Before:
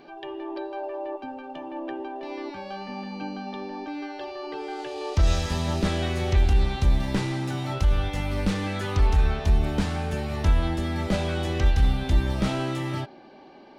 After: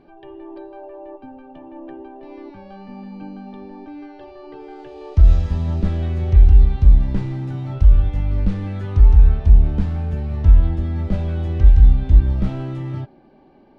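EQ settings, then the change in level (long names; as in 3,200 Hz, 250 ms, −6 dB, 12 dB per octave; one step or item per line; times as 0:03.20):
RIAA equalisation playback
−6.5 dB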